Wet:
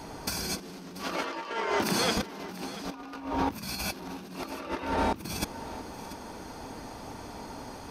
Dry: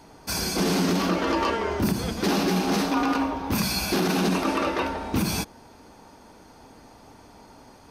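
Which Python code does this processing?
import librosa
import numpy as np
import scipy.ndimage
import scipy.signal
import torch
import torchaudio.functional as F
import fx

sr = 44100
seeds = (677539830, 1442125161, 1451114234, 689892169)

y = fx.weighting(x, sr, curve='A', at=(1.03, 2.17))
y = fx.over_compress(y, sr, threshold_db=-32.0, ratio=-0.5)
y = y + 10.0 ** (-15.5 / 20.0) * np.pad(y, (int(687 * sr / 1000.0), 0))[:len(y)]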